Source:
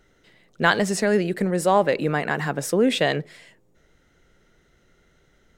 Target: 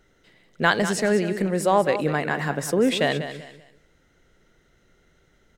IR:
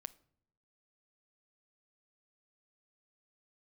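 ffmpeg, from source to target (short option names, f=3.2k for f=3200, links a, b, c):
-af "aecho=1:1:194|388|582:0.282|0.0789|0.0221,volume=-1dB"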